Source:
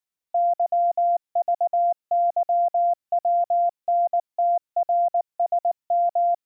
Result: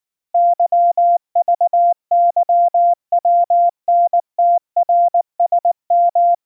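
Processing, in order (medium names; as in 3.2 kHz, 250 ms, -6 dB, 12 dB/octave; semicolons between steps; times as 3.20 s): dynamic bell 820 Hz, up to +6 dB, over -33 dBFS, Q 0.96; trim +2.5 dB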